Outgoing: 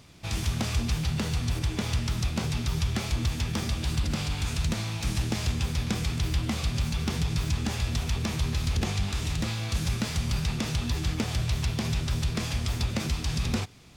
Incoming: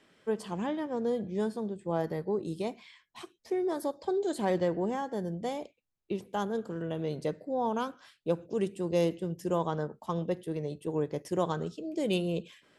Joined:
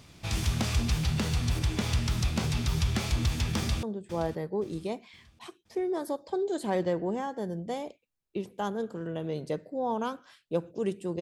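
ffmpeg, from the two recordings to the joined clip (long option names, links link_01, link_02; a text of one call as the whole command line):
ffmpeg -i cue0.wav -i cue1.wav -filter_complex "[0:a]apad=whole_dur=11.21,atrim=end=11.21,atrim=end=3.832[link_01];[1:a]atrim=start=1.578:end=8.96[link_02];[link_01][link_02]acrossfade=duration=0.004:curve1=hsin:curve2=hsin,asplit=2[link_03][link_04];[link_04]afade=type=in:start_time=3.57:duration=0.01,afade=type=out:start_time=3.83:duration=0.01,aecho=0:1:520|1040|1560|2080:0.188365|0.075346|0.0301384|0.0120554[link_05];[link_03][link_05]amix=inputs=2:normalize=0" out.wav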